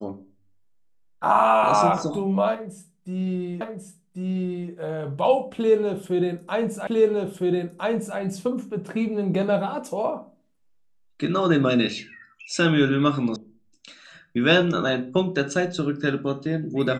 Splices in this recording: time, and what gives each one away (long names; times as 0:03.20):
0:03.61: the same again, the last 1.09 s
0:06.87: the same again, the last 1.31 s
0:13.36: cut off before it has died away